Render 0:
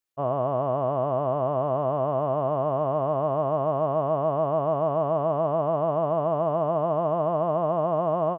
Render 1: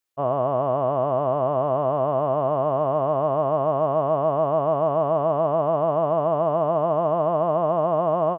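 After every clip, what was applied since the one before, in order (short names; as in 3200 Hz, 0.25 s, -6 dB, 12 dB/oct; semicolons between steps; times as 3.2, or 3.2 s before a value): low shelf 180 Hz -4.5 dB; gain +3.5 dB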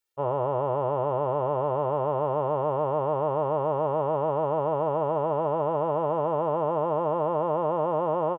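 comb 2.2 ms, depth 83%; gain -3.5 dB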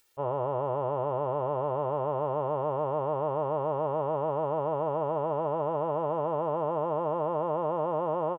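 upward compressor, threshold -49 dBFS; gain -3.5 dB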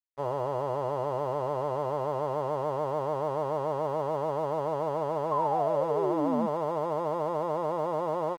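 crossover distortion -49 dBFS; painted sound fall, 5.31–6.47, 210–1100 Hz -29 dBFS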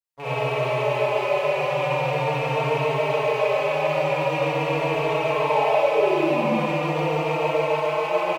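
rattling part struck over -39 dBFS, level -26 dBFS; reverb RT60 1.2 s, pre-delay 36 ms, DRR -9 dB; endless flanger 3.8 ms -0.42 Hz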